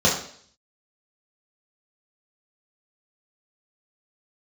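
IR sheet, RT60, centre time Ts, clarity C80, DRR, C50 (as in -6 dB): 0.55 s, 34 ms, 10.0 dB, -5.5 dB, 6.0 dB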